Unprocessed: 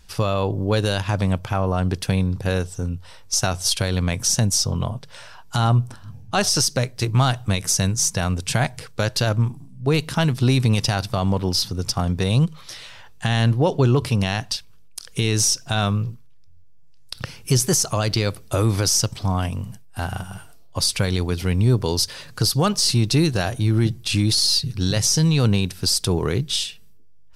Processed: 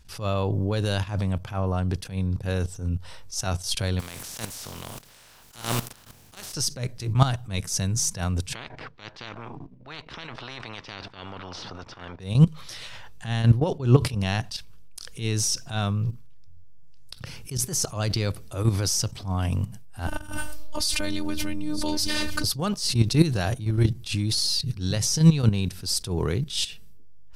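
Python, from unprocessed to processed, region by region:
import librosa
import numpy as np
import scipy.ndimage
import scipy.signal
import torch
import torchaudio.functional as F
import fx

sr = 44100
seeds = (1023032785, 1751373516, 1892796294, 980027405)

y = fx.spec_flatten(x, sr, power=0.33, at=(3.99, 6.53), fade=0.02)
y = fx.level_steps(y, sr, step_db=18, at=(3.99, 6.53), fade=0.02)
y = fx.chain(y, sr, fx.spacing_loss(db_at_10k=45),
    fx.spectral_comp(ratio=10.0), at=(8.54, 12.2))
y = fx.chain(y, sr, fx.echo_single(ms=923, db=-17.0),
    fx.robotise(hz=302.0),
    fx.pre_swell(db_per_s=20.0), at=(20.07, 22.44))
y = fx.low_shelf(y, sr, hz=190.0, db=4.5)
y = fx.level_steps(y, sr, step_db=14)
y = fx.attack_slew(y, sr, db_per_s=150.0)
y = y * librosa.db_to_amplitude(3.5)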